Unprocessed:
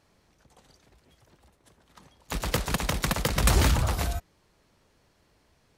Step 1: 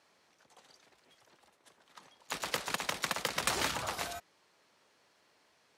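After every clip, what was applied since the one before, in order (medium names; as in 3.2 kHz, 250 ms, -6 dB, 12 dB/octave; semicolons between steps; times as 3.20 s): frequency weighting A; in parallel at +2 dB: compression, threshold -37 dBFS, peak gain reduction 15.5 dB; on the sum: trim -7.5 dB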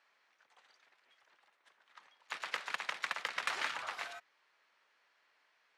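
band-pass filter 1.8 kHz, Q 1.1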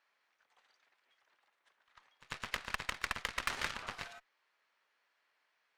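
Chebyshev shaper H 3 -11 dB, 8 -30 dB, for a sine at -18 dBFS; saturation -30.5 dBFS, distortion -8 dB; pre-echo 95 ms -18.5 dB; trim +11 dB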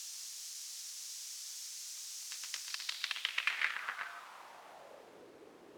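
in parallel at -5 dB: word length cut 6-bit, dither triangular; on the sum: band-pass sweep 5.9 kHz -> 380 Hz, 2.62–5.33 s; trim +3.5 dB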